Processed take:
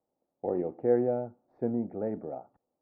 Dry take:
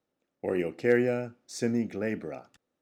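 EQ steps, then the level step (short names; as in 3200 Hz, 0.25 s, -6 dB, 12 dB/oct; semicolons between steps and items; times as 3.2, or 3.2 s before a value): ladder low-pass 940 Hz, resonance 50%; +6.0 dB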